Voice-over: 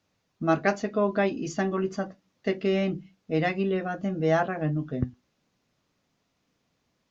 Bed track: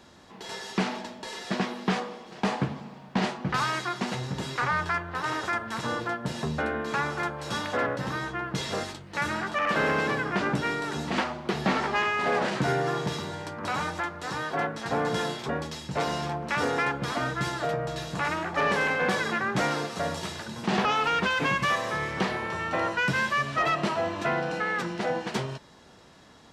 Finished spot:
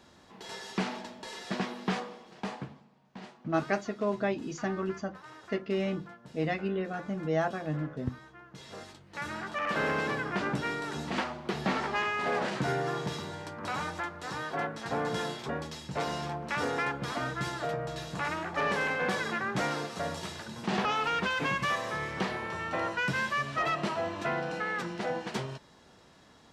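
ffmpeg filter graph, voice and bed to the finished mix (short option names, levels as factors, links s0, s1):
-filter_complex "[0:a]adelay=3050,volume=0.531[s0];[1:a]volume=3.35,afade=t=out:st=1.95:d=0.92:silence=0.177828,afade=t=in:st=8.51:d=1.33:silence=0.177828[s1];[s0][s1]amix=inputs=2:normalize=0"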